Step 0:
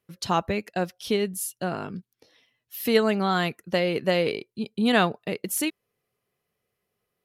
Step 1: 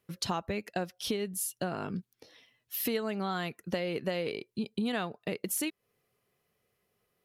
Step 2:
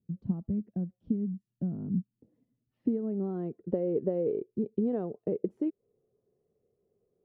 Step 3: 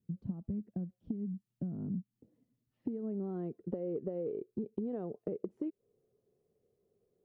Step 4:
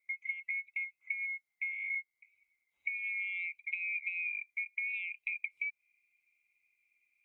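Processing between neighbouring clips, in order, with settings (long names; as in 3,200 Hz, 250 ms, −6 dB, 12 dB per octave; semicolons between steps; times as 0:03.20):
downward compressor 5 to 1, threshold −33 dBFS, peak gain reduction 16.5 dB; level +2.5 dB
low-pass filter sweep 210 Hz → 430 Hz, 0:02.20–0:03.73
downward compressor, threshold −33 dBFS, peak gain reduction 10 dB; level −1 dB
neighbouring bands swapped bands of 2,000 Hz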